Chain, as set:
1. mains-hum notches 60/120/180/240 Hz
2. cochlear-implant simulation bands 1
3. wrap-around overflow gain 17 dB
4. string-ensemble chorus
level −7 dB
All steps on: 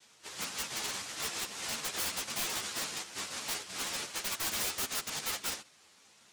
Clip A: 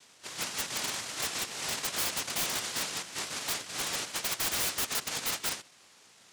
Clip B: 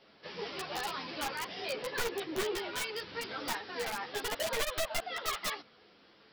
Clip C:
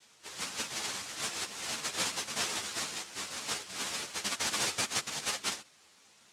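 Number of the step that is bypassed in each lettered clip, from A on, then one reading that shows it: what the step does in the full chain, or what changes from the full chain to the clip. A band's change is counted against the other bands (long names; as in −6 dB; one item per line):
4, change in crest factor −4.0 dB
2, 8 kHz band −11.5 dB
3, change in crest factor +4.0 dB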